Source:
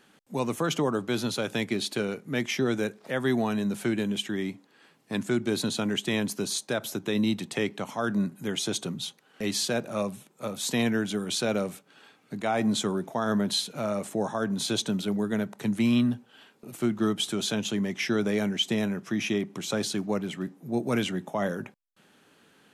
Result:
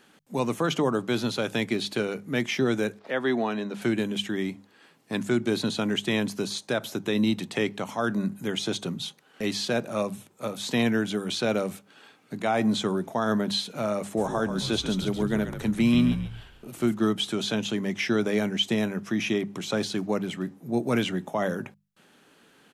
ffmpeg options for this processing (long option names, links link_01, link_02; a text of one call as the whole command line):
ffmpeg -i in.wav -filter_complex "[0:a]asettb=1/sr,asplit=3[link_01][link_02][link_03];[link_01]atrim=end=2.994[link_04];[link_02]atrim=start=2.99:end=3.82,asetpts=PTS-STARTPTS,afade=type=in:duration=0.004:curve=qsin,afade=type=out:start_time=0.826:duration=0.004:curve=qsin,acrossover=split=220 5100:gain=0.2 1 0.141[link_05][link_06][link_07];[link_05][link_06][link_07]amix=inputs=3:normalize=0[link_08];[link_03]atrim=start=3.816[link_09];[link_04][link_08]acrossfade=duration=0.004:curve1=hsin:curve2=qsin[link_10];[link_10][link_09]acrossfade=duration=0.004:curve1=qsin:curve2=hsin,asplit=3[link_11][link_12][link_13];[link_11]afade=type=out:start_time=14.16:duration=0.02[link_14];[link_12]asplit=5[link_15][link_16][link_17][link_18][link_19];[link_16]adelay=137,afreqshift=-65,volume=-9dB[link_20];[link_17]adelay=274,afreqshift=-130,volume=-18.1dB[link_21];[link_18]adelay=411,afreqshift=-195,volume=-27.2dB[link_22];[link_19]adelay=548,afreqshift=-260,volume=-36.4dB[link_23];[link_15][link_20][link_21][link_22][link_23]amix=inputs=5:normalize=0,afade=type=in:start_time=14.16:duration=0.02,afade=type=out:start_time=16.93:duration=0.02[link_24];[link_13]afade=type=in:start_time=16.93:duration=0.02[link_25];[link_14][link_24][link_25]amix=inputs=3:normalize=0,bandreject=frequency=50:width_type=h:width=6,bandreject=frequency=100:width_type=h:width=6,bandreject=frequency=150:width_type=h:width=6,bandreject=frequency=200:width_type=h:width=6,acrossover=split=4900[link_26][link_27];[link_27]acompressor=threshold=-43dB:ratio=4:attack=1:release=60[link_28];[link_26][link_28]amix=inputs=2:normalize=0,volume=2dB" out.wav